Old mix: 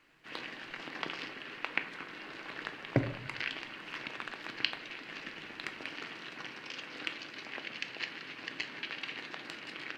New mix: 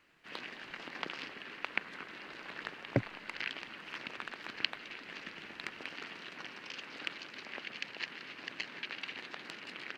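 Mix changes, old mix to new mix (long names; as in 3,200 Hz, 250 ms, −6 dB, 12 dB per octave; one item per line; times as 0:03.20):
background: add low-shelf EQ 74 Hz −7 dB
reverb: off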